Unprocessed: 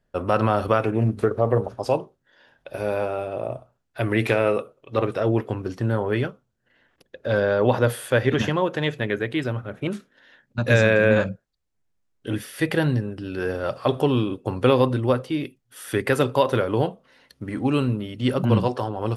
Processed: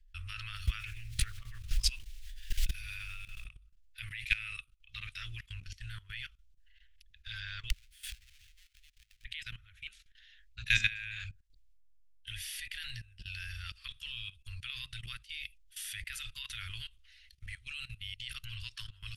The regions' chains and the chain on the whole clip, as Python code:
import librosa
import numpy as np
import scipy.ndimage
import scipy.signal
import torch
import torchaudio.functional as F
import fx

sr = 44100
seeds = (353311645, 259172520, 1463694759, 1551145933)

y = fx.hum_notches(x, sr, base_hz=60, count=6, at=(0.54, 3.44), fade=0.02)
y = fx.dmg_noise_colour(y, sr, seeds[0], colour='pink', level_db=-57.0, at=(0.54, 3.44), fade=0.02)
y = fx.pre_swell(y, sr, db_per_s=44.0, at=(0.54, 3.44), fade=0.02)
y = fx.chain(y, sr, fx.halfwave_hold(),
    fx.gate_flip(shuts_db=-22.0, range_db=-34),
    fx.pre_swell(db_per_s=140.0), at=(7.7, 9.25))
y = scipy.signal.sosfilt(scipy.signal.cheby2(4, 60, [150.0, 840.0], 'bandstop', fs=sr, output='sos'), y)
y = fx.tilt_eq(y, sr, slope=-2.5)
y = fx.level_steps(y, sr, step_db=17)
y = y * librosa.db_to_amplitude(9.0)